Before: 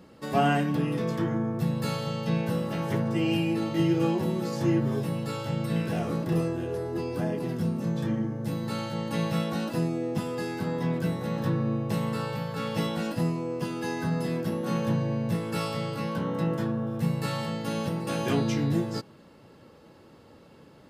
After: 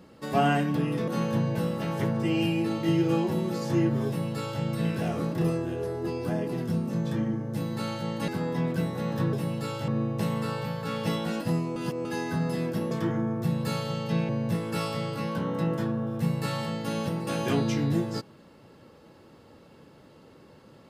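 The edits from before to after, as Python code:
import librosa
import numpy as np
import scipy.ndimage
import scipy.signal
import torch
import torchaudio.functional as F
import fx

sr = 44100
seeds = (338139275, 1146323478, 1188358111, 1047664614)

y = fx.edit(x, sr, fx.swap(start_s=1.08, length_s=1.38, other_s=14.62, other_length_s=0.47),
    fx.duplicate(start_s=4.98, length_s=0.55, to_s=11.59),
    fx.cut(start_s=9.19, length_s=1.35),
    fx.reverse_span(start_s=13.47, length_s=0.29), tone=tone)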